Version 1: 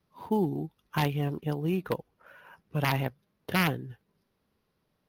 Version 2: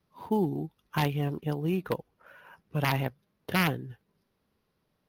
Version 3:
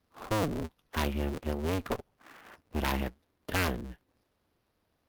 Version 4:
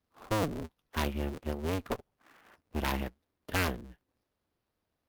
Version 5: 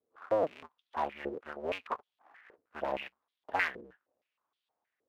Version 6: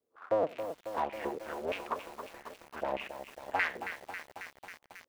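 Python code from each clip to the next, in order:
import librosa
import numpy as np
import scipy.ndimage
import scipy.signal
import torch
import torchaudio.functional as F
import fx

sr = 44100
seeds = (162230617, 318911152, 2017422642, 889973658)

y1 = x
y2 = fx.cycle_switch(y1, sr, every=2, mode='inverted')
y2 = fx.clip_asym(y2, sr, top_db=-33.0, bottom_db=-18.0)
y3 = fx.upward_expand(y2, sr, threshold_db=-41.0, expansion=1.5)
y4 = fx.filter_held_bandpass(y3, sr, hz=6.4, low_hz=450.0, high_hz=3400.0)
y4 = F.gain(torch.from_numpy(y4), 9.0).numpy()
y5 = y4 + 10.0 ** (-21.5 / 20.0) * np.pad(y4, (int(89 * sr / 1000.0), 0))[:len(y4)]
y5 = fx.echo_crushed(y5, sr, ms=272, feedback_pct=80, bits=8, wet_db=-9)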